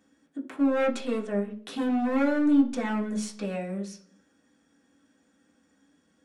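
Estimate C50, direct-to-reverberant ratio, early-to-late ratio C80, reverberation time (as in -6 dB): 12.5 dB, -2.5 dB, 17.5 dB, 0.50 s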